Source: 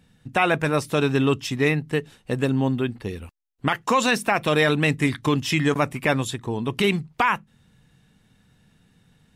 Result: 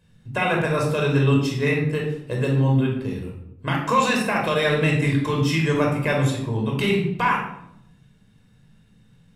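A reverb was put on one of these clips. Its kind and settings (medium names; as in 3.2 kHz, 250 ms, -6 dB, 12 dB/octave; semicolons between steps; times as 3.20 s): simulated room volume 1900 m³, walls furnished, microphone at 5.2 m; trim -6 dB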